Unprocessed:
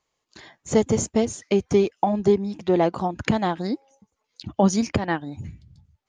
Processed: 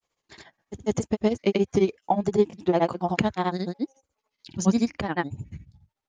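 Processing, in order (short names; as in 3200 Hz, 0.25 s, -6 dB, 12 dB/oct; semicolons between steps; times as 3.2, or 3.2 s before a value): vibrato 3.2 Hz 52 cents; grains 0.1 s, grains 14/s, pitch spread up and down by 0 st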